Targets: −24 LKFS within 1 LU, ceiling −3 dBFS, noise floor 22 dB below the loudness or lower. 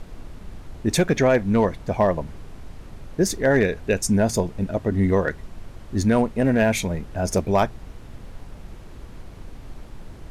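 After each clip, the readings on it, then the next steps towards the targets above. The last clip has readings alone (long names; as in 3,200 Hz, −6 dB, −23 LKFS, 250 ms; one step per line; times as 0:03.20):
share of clipped samples 0.5%; peaks flattened at −10.0 dBFS; background noise floor −41 dBFS; target noise floor −44 dBFS; integrated loudness −22.0 LKFS; sample peak −10.0 dBFS; target loudness −24.0 LKFS
→ clipped peaks rebuilt −10 dBFS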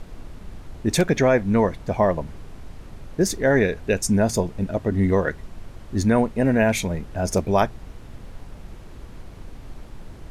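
share of clipped samples 0.0%; background noise floor −41 dBFS; target noise floor −44 dBFS
→ noise reduction from a noise print 6 dB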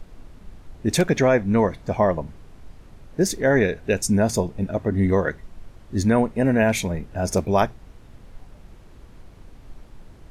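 background noise floor −47 dBFS; integrated loudness −22.0 LKFS; sample peak −5.0 dBFS; target loudness −24.0 LKFS
→ level −2 dB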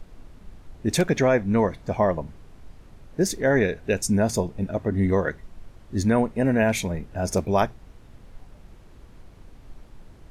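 integrated loudness −24.0 LKFS; sample peak −7.0 dBFS; background noise floor −49 dBFS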